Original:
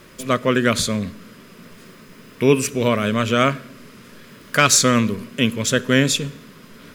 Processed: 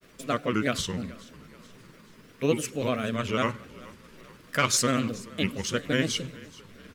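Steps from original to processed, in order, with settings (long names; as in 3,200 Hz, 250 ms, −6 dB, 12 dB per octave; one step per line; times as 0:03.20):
granular cloud, spray 10 ms, pitch spread up and down by 3 semitones
echo with shifted repeats 428 ms, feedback 50%, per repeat −32 Hz, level −21 dB
level −8 dB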